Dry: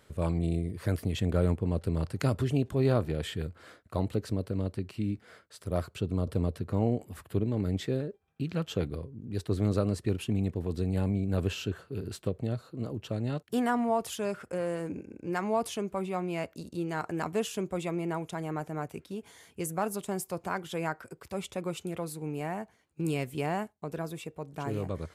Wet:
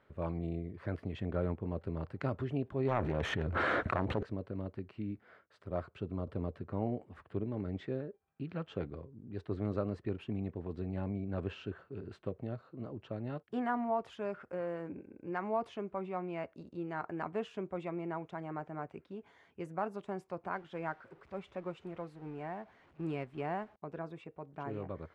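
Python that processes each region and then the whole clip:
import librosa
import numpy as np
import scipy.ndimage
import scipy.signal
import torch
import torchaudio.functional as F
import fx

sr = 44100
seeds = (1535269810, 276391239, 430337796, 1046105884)

y = fx.chain(x, sr, fx.self_delay(depth_ms=0.61),
    fx.notch(hz=4900.0, q=7.6),
    fx.env_flatten(amount_pct=100), at=(2.88, 4.23))
y = fx.chain(y, sr, fx.zero_step(step_db=-42.0),
    fx.upward_expand(threshold_db=-45.0, expansion=1.5), at=(20.53, 23.76))
y = scipy.signal.sosfilt(scipy.signal.butter(2, 1900.0, 'lowpass', fs=sr, output='sos'), y)
y = fx.low_shelf(y, sr, hz=240.0, db=-7.5)
y = fx.notch(y, sr, hz=470.0, q=14.0)
y = y * librosa.db_to_amplitude(-3.5)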